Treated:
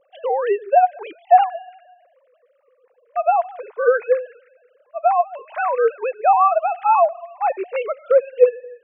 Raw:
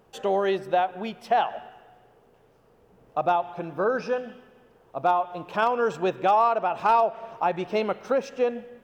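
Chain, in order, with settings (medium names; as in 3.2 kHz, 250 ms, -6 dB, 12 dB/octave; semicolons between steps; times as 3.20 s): formants replaced by sine waves; trim +6.5 dB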